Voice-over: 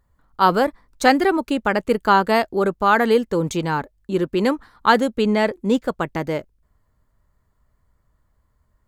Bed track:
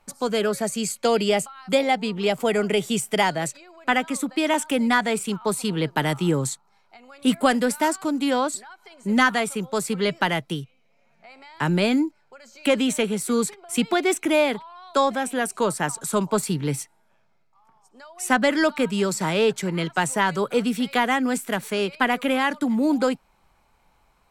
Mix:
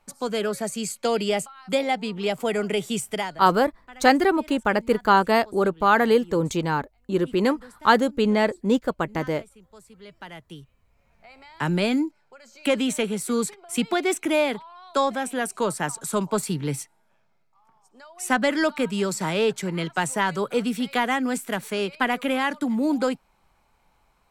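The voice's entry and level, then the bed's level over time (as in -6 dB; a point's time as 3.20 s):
3.00 s, -2.0 dB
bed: 3.09 s -3 dB
3.64 s -24.5 dB
9.94 s -24.5 dB
11.12 s -2 dB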